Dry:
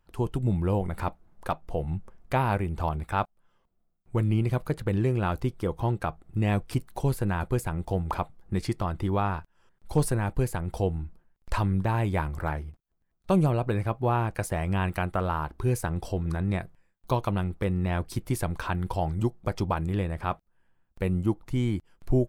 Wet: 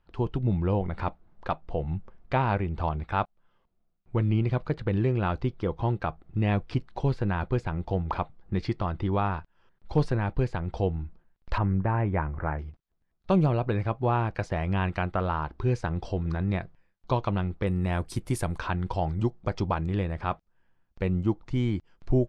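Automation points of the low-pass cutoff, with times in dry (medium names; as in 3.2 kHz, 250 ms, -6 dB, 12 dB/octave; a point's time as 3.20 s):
low-pass 24 dB/octave
4.7 kHz
from 11.58 s 2.1 kHz
from 12.59 s 5.2 kHz
from 17.67 s 11 kHz
from 18.58 s 5.9 kHz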